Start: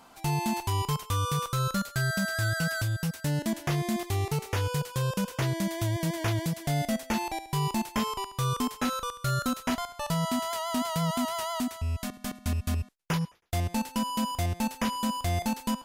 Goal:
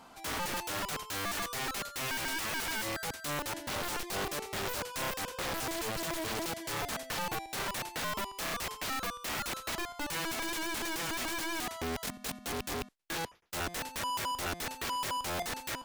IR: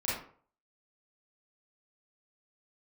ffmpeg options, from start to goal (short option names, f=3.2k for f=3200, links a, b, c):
-af "aeval=exprs='(mod(29.9*val(0)+1,2)-1)/29.9':c=same,highshelf=f=8.6k:g=-5.5"